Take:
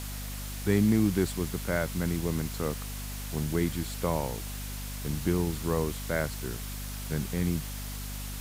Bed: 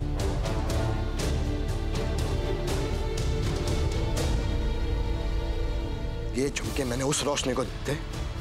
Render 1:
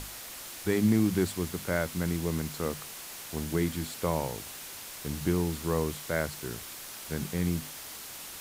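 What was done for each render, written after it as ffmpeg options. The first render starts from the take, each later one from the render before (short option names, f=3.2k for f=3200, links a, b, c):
-af "bandreject=f=50:t=h:w=6,bandreject=f=100:t=h:w=6,bandreject=f=150:t=h:w=6,bandreject=f=200:t=h:w=6,bandreject=f=250:t=h:w=6"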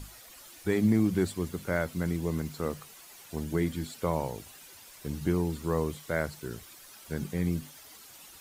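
-af "afftdn=nr=11:nf=-43"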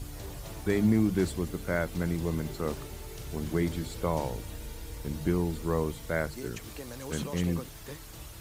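-filter_complex "[1:a]volume=-13.5dB[a];[0:a][a]amix=inputs=2:normalize=0"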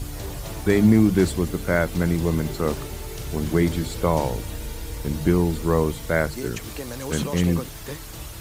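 -af "volume=8.5dB"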